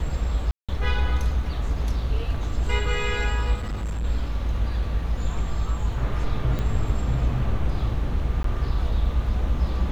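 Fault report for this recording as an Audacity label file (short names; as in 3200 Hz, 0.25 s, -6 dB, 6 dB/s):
0.510000	0.690000	gap 0.176 s
3.570000	4.050000	clipped -24.5 dBFS
6.590000	6.590000	pop -16 dBFS
8.430000	8.440000	gap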